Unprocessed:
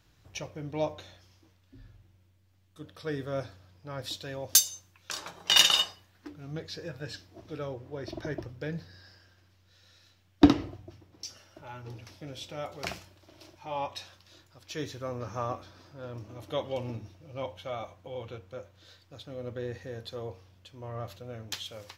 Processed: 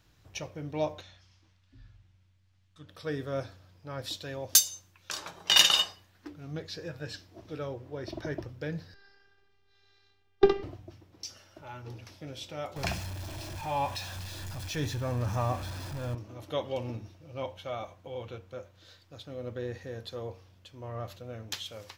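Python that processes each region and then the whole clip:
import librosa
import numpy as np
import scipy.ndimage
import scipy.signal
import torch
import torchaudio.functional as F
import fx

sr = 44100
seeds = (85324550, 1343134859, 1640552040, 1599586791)

y = fx.chain(x, sr, fx.lowpass(hz=6600.0, slope=12),
    fx.peak_eq(hz=410.0, db=-10.5, octaves=1.8), at=(1.01, 2.89))
y = fx.chain(y, sr, fx.lowpass(hz=3500.0, slope=12),
    fx.robotise(hz=399.0), at=(8.94, 10.63))
y = fx.chain(y, sr, fx.zero_step(step_db=-40.0),
    fx.low_shelf(hz=150.0, db=9.0),
    fx.comb(ms=1.2, depth=0.36), at=(12.76, 16.15))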